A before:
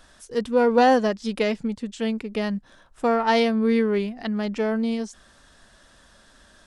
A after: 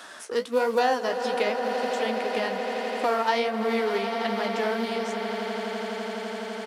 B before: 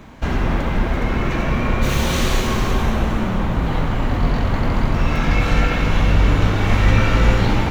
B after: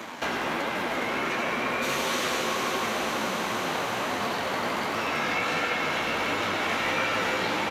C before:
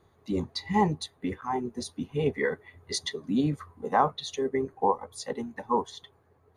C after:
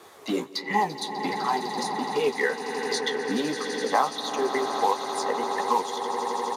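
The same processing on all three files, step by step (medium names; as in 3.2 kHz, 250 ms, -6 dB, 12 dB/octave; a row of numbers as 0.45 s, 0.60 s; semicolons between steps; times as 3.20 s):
companding laws mixed up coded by A; high-pass 290 Hz 12 dB/octave; bass shelf 440 Hz -7 dB; flange 1.4 Hz, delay 8.2 ms, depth 9.7 ms, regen +35%; on a send: echo with a slow build-up 84 ms, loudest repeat 8, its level -17 dB; on the sum: resampled via 32 kHz; three bands compressed up and down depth 70%; normalise loudness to -27 LUFS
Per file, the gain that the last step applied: +4.5 dB, +1.0 dB, +10.5 dB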